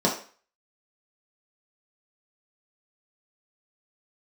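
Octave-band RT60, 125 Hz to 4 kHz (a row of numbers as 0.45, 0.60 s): 0.30, 0.40, 0.40, 0.45, 0.45, 0.40 s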